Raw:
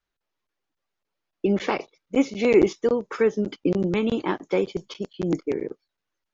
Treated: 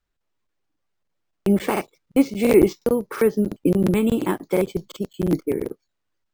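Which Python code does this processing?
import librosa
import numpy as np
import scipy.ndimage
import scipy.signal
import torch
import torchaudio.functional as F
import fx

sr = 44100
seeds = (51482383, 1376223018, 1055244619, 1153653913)

y = np.repeat(x[::4], 4)[:len(x)]
y = fx.low_shelf(y, sr, hz=240.0, db=9.0)
y = fx.buffer_crackle(y, sr, first_s=0.67, period_s=0.35, block=2048, kind='repeat')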